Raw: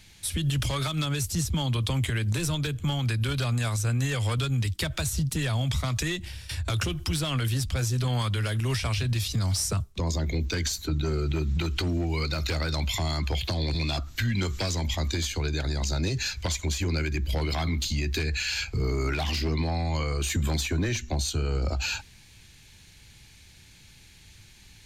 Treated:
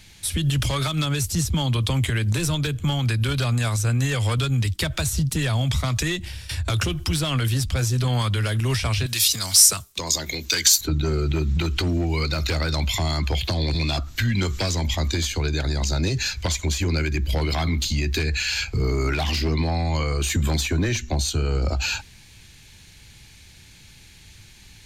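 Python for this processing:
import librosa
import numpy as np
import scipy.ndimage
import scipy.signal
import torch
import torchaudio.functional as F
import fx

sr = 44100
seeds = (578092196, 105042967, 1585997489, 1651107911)

y = fx.tilt_eq(x, sr, slope=4.0, at=(9.06, 10.81))
y = y * 10.0 ** (4.5 / 20.0)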